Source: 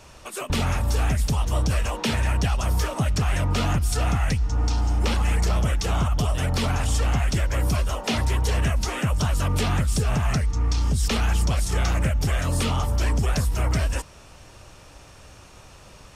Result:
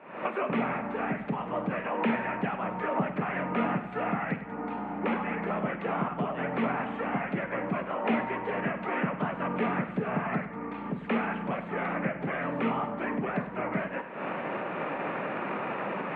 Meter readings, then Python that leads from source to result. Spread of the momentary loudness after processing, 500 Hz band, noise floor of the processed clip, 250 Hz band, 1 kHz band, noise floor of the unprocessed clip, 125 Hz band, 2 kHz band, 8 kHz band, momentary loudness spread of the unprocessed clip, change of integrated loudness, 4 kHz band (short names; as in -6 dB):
4 LU, +0.5 dB, -40 dBFS, -0.5 dB, +0.5 dB, -47 dBFS, -16.0 dB, -1.5 dB, under -40 dB, 2 LU, -7.5 dB, -18.0 dB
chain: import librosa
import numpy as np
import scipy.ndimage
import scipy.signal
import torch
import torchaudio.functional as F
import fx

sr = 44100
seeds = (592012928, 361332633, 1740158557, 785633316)

y = fx.recorder_agc(x, sr, target_db=-19.0, rise_db_per_s=76.0, max_gain_db=30)
y = scipy.signal.sosfilt(scipy.signal.ellip(3, 1.0, 40, [190.0, 2200.0], 'bandpass', fs=sr, output='sos'), y)
y = fx.air_absorb(y, sr, metres=110.0)
y = fx.echo_multitap(y, sr, ms=(48, 99, 206), db=(-13.0, -12.0, -18.0))